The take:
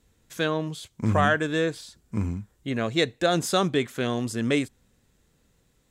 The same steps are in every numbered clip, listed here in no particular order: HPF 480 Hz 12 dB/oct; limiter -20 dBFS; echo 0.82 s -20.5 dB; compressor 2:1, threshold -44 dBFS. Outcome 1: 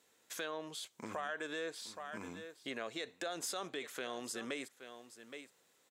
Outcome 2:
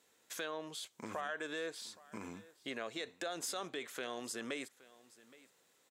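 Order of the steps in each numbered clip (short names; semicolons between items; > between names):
echo > limiter > HPF > compressor; limiter > HPF > compressor > echo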